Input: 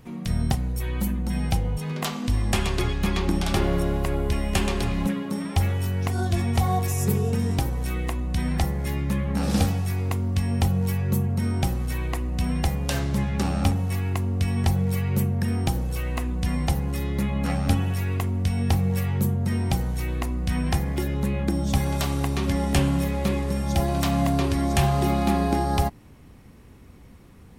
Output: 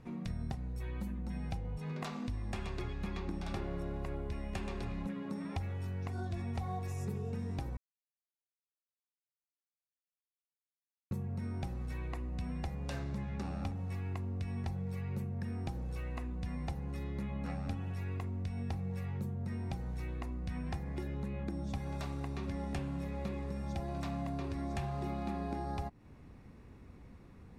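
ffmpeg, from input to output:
-filter_complex "[0:a]asplit=3[a][b][c];[a]atrim=end=7.77,asetpts=PTS-STARTPTS,afade=t=out:st=7.766:d=0.004:c=hsin[d];[b]atrim=start=7.77:end=11.11,asetpts=PTS-STARTPTS,volume=0[e];[c]atrim=start=11.11,asetpts=PTS-STARTPTS,afade=t=in:d=0.004:c=hsin[f];[d][e][f]concat=n=3:v=0:a=1,aemphasis=mode=reproduction:type=50fm,acompressor=threshold=-32dB:ratio=3,bandreject=f=3.1k:w=9.8,volume=-6dB"

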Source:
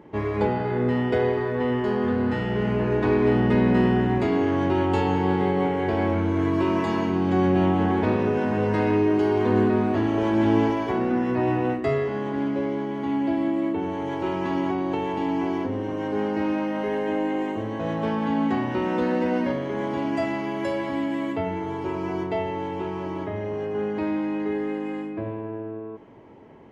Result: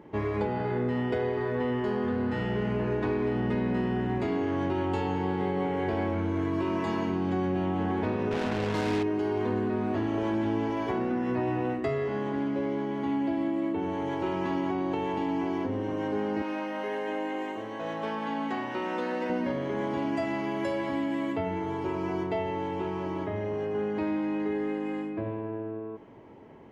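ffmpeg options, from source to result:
-filter_complex "[0:a]asettb=1/sr,asplit=3[a][b][c];[a]atrim=end=8.314[d];[b]atrim=start=8.31:end=9.03,asetpts=PTS-STARTPTS,afade=t=in:d=0.004:c=qsin,afade=t=out:st=0.716:d=0.004:c=qsin,acrusher=bits=3:mix=0:aa=0.5[e];[c]atrim=start=9.026[f];[d][e]acrossfade=d=0.004:c1=hsin:c2=qsin[g];[g][f]acrossfade=d=0.004:c1=qsin:c2=hsin,asettb=1/sr,asplit=3[h][i][j];[h]atrim=end=16.424[k];[i]atrim=start=16.42:end=19.3,asetpts=PTS-STARTPTS,afade=t=in:d=0.004:c=qsin,afade=t=out:st=2.876:d=0.004:c=qsin,highpass=f=600:p=1[l];[j]atrim=start=19.296[m];[k][l]acrossfade=d=0.004:c1=hsin:c2=qsin[n];[n][m]acrossfade=d=0.004:c1=qsin:c2=hsin,acompressor=threshold=-23dB:ratio=6,volume=-2dB"

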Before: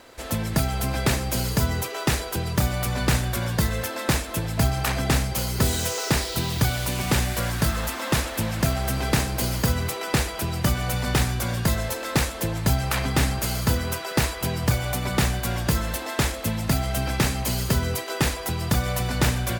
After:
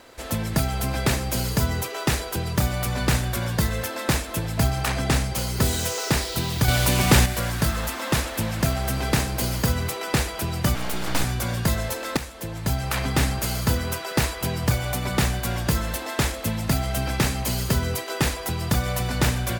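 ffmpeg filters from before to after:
-filter_complex "[0:a]asettb=1/sr,asplit=3[a][b][c];[a]atrim=end=4.824[d];[b]atrim=start=4.82:end=5.57,asetpts=PTS-STARTPTS,afade=t=in:d=0.004:c=qsin,afade=t=out:st=0.746:d=0.004:c=qsin,equalizer=f=13k:w=6.7:g=-13[e];[c]atrim=start=5.566[f];[d][e]acrossfade=d=0.004:c1=hsin:c2=qsin[g];[g][f]acrossfade=d=0.004:c1=qsin:c2=hsin,asettb=1/sr,asplit=3[h][i][j];[h]atrim=end=6.684[k];[i]atrim=start=6.68:end=7.26,asetpts=PTS-STARTPTS,afade=t=in:d=0.004:c=qsin,afade=t=out:st=0.576:d=0.004:c=qsin,acontrast=64[l];[j]atrim=start=7.256[m];[k][l]acrossfade=d=0.004:c1=hsin:c2=qsin[n];[n][m]acrossfade=d=0.004:c1=qsin:c2=hsin,asettb=1/sr,asplit=3[o][p][q];[o]atrim=end=10.754[r];[p]atrim=start=10.75:end=11.24,asetpts=PTS-STARTPTS,afade=t=in:d=0.004:c=qsin,afade=t=out:st=0.486:d=0.004:c=qsin,aeval=exprs='abs(val(0))':c=same[s];[q]atrim=start=11.236[t];[r][s]acrossfade=d=0.004:c1=hsin:c2=qsin[u];[u][t]acrossfade=d=0.004:c1=qsin:c2=hsin,asplit=2[v][w];[v]atrim=end=12.17,asetpts=PTS-STARTPTS,afade=t=out:st=12.166:d=0.004:c=hsin:silence=0.251189[x];[w]atrim=start=12.17,asetpts=PTS-STARTPTS,afade=t=in:d=0.9:silence=0.251189[y];[x][y]concat=n=2:v=0:a=1"

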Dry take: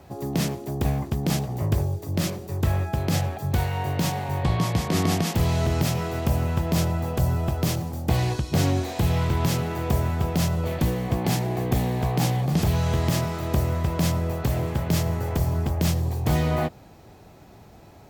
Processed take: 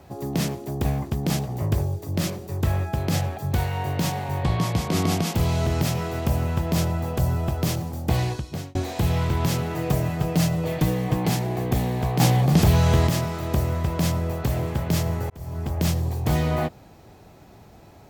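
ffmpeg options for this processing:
-filter_complex "[0:a]asettb=1/sr,asplit=3[a][b][c];[a]atrim=end=4.724[d];[b]atrim=start=4.72:end=5.67,asetpts=PTS-STARTPTS,afade=t=in:d=0.004:c=qsin,afade=t=out:st=0.946:d=0.004:c=qsin,bandreject=f=1.8k:w=12[e];[c]atrim=start=5.666[f];[d][e]acrossfade=d=0.004:c1=hsin:c2=qsin[g];[g][f]acrossfade=d=0.004:c1=qsin:c2=hsin,asettb=1/sr,asplit=3[h][i][j];[h]atrim=end=9.744[k];[i]atrim=start=9.74:end=11.29,asetpts=PTS-STARTPTS,afade=t=in:d=0.004:c=qsin,afade=t=out:st=1.546:d=0.004:c=qsin,aecho=1:1:6.5:0.65,atrim=end_sample=68355[l];[j]atrim=start=11.286[m];[k][l]acrossfade=d=0.004:c1=hsin:c2=qsin[n];[n][m]acrossfade=d=0.004:c1=qsin:c2=hsin,asplit=5[o][p][q][r][s];[o]atrim=end=8.75,asetpts=PTS-STARTPTS,afade=t=out:st=8.2:d=0.55[t];[p]atrim=start=8.75:end=12.202,asetpts=PTS-STARTPTS,afade=t=in:d=0.004:c=hsin[u];[q]atrim=start=12.198:end=13.072,asetpts=PTS-STARTPTS,volume=5dB[v];[r]atrim=start=13.068:end=15.3,asetpts=PTS-STARTPTS,afade=t=out:st=2.228:d=0.004:c=hsin[w];[s]atrim=start=15.3,asetpts=PTS-STARTPTS,afade=t=in:d=0.51[x];[t][u]concat=n=2:v=0:a=1[y];[y][v]acrossfade=d=0.004:c1=hsin:c2=hsin[z];[w][x]concat=n=2:v=0:a=1[aa];[z][aa]acrossfade=d=0.004:c1=hsin:c2=hsin"

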